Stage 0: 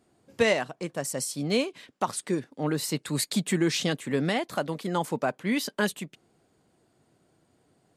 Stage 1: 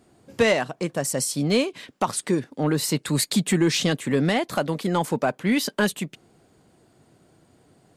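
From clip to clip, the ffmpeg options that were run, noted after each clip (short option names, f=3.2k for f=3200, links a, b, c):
-filter_complex "[0:a]lowshelf=f=190:g=3,asplit=2[a][b];[b]acompressor=threshold=-32dB:ratio=6,volume=-3dB[c];[a][c]amix=inputs=2:normalize=0,asoftclip=type=tanh:threshold=-12dB,volume=3dB"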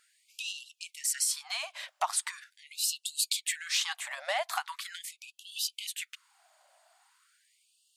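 -af "acompressor=threshold=-23dB:ratio=6,afftfilt=real='re*gte(b*sr/1024,550*pow(2700/550,0.5+0.5*sin(2*PI*0.41*pts/sr)))':imag='im*gte(b*sr/1024,550*pow(2700/550,0.5+0.5*sin(2*PI*0.41*pts/sr)))':win_size=1024:overlap=0.75"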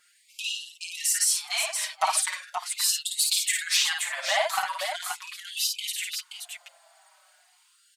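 -filter_complex "[0:a]asoftclip=type=tanh:threshold=-14.5dB,asplit=2[a][b];[b]aecho=0:1:54|527:0.668|0.473[c];[a][c]amix=inputs=2:normalize=0,asplit=2[d][e];[e]adelay=5.1,afreqshift=-0.79[f];[d][f]amix=inputs=2:normalize=1,volume=8dB"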